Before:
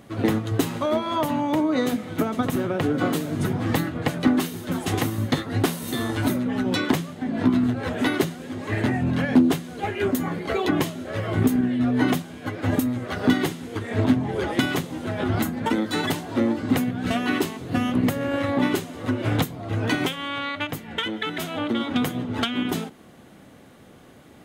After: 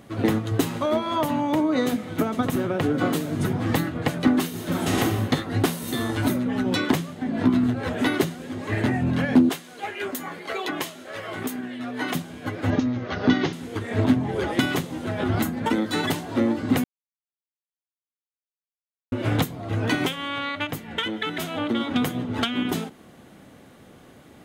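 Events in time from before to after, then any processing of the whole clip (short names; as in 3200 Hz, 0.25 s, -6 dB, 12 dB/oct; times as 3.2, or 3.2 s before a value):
4.5–5 reverb throw, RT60 1.5 s, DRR -2.5 dB
9.49–12.15 HPF 870 Hz 6 dB/oct
12.7–13.53 steep low-pass 6300 Hz 72 dB/oct
16.84–19.12 mute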